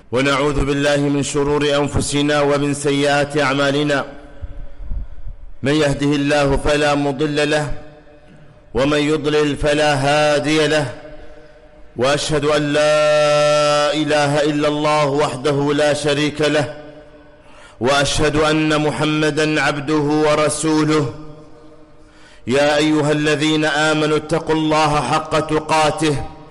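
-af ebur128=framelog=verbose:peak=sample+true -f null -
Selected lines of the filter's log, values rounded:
Integrated loudness:
  I:         -16.5 LUFS
  Threshold: -27.3 LUFS
Loudness range:
  LRA:         3.2 LU
  Threshold: -37.4 LUFS
  LRA low:   -18.7 LUFS
  LRA high:  -15.5 LUFS
Sample peak:
  Peak:      -10.8 dBFS
True peak:
  Peak:      -10.3 dBFS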